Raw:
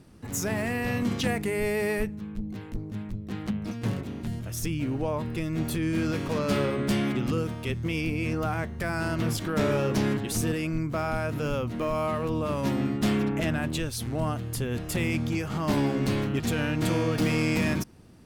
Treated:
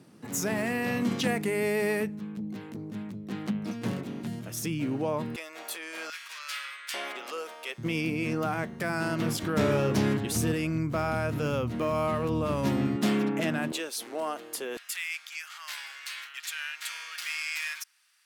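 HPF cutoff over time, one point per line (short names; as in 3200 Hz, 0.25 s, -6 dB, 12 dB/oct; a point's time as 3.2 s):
HPF 24 dB/oct
140 Hz
from 5.36 s 580 Hz
from 6.1 s 1500 Hz
from 6.94 s 540 Hz
from 7.78 s 140 Hz
from 9.43 s 58 Hz
from 12.96 s 170 Hz
from 13.72 s 360 Hz
from 14.77 s 1500 Hz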